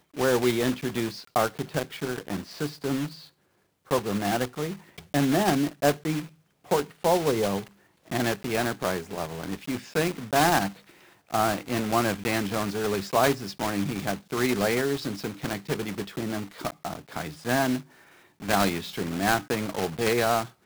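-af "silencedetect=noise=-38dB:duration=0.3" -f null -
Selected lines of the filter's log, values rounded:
silence_start: 3.25
silence_end: 3.91 | silence_duration: 0.66
silence_start: 6.27
silence_end: 6.69 | silence_duration: 0.42
silence_start: 7.67
silence_end: 8.08 | silence_duration: 0.41
silence_start: 10.72
silence_end: 11.31 | silence_duration: 0.59
silence_start: 17.82
silence_end: 18.41 | silence_duration: 0.59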